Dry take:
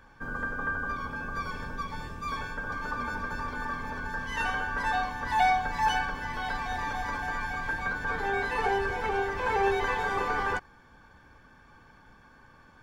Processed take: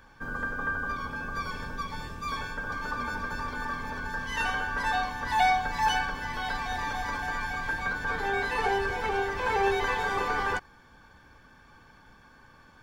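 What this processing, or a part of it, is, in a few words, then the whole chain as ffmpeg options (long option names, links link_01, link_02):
presence and air boost: -af "equalizer=frequency=4100:width_type=o:width=1.4:gain=3.5,highshelf=frequency=9300:gain=5.5"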